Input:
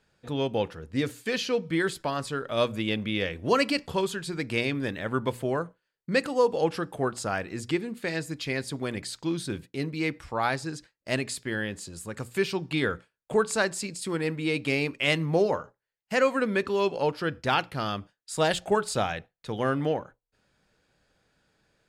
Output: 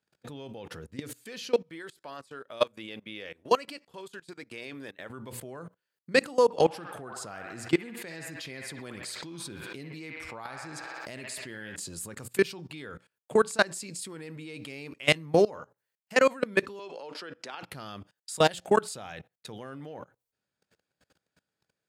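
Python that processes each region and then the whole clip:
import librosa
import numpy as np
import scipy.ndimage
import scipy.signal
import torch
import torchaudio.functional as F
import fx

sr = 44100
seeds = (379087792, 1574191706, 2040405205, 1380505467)

y = fx.chain(x, sr, fx.bass_treble(bass_db=-10, treble_db=-2),
    fx.upward_expand(threshold_db=-37.0, expansion=1.5), at=(1.62, 5.1))
y = fx.chain(y, sr, fx.echo_wet_bandpass(ms=63, feedback_pct=60, hz=1400.0, wet_db=-4),
    fx.pre_swell(db_per_s=61.0), at=(6.44, 11.76))
y = fx.chain(y, sr, fx.bandpass_edges(low_hz=350.0, high_hz=7600.0),
    fx.band_squash(depth_pct=40), at=(16.79, 17.63))
y = fx.level_steps(y, sr, step_db=23)
y = scipy.signal.sosfilt(scipy.signal.butter(2, 89.0, 'highpass', fs=sr, output='sos'), y)
y = fx.high_shelf(y, sr, hz=7700.0, db=7.5)
y = F.gain(torch.from_numpy(y), 4.5).numpy()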